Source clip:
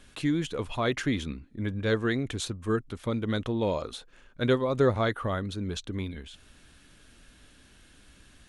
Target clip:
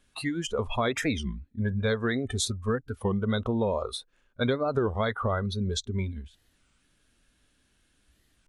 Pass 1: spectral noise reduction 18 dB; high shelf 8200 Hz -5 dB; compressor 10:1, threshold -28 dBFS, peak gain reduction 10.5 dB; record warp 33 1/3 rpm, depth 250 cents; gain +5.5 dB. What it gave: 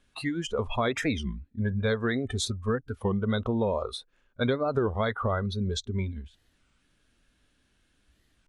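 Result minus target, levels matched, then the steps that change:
8000 Hz band -3.5 dB
change: high shelf 8200 Hz +4.5 dB

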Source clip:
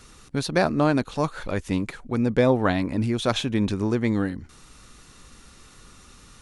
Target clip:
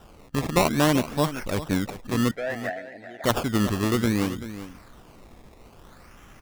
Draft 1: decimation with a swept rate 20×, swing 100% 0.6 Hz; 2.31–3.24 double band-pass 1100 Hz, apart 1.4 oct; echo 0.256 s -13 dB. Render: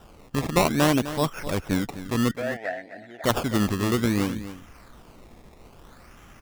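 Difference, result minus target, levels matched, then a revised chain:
echo 0.129 s early
decimation with a swept rate 20×, swing 100% 0.6 Hz; 2.31–3.24 double band-pass 1100 Hz, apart 1.4 oct; echo 0.385 s -13 dB

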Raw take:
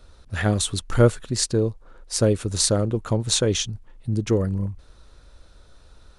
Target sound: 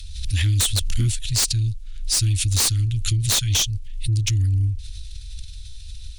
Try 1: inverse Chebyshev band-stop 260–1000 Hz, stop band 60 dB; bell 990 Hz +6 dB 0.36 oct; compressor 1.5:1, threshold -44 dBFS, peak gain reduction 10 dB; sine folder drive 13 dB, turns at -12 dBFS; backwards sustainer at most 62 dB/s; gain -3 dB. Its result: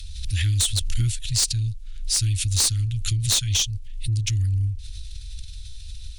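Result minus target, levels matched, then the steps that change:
compressor: peak gain reduction +3.5 dB
change: compressor 1.5:1, threshold -33.5 dBFS, peak gain reduction 6.5 dB

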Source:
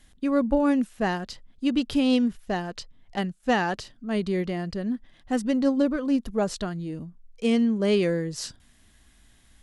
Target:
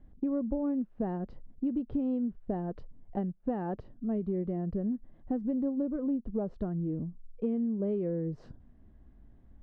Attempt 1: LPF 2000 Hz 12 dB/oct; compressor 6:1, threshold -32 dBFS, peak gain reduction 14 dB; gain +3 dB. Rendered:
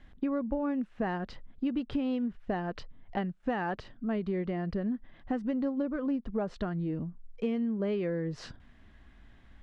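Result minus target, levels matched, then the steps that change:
2000 Hz band +16.0 dB
change: LPF 550 Hz 12 dB/oct

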